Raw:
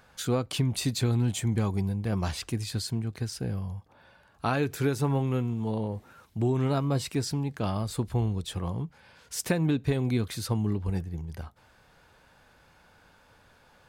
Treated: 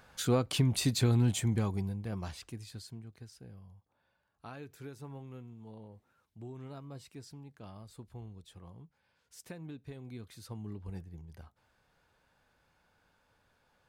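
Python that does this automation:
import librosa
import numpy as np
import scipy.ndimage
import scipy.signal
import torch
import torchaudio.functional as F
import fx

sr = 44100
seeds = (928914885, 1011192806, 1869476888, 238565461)

y = fx.gain(x, sr, db=fx.line((1.3, -1.0), (2.4, -12.0), (3.51, -19.5), (10.02, -19.5), (10.93, -12.5)))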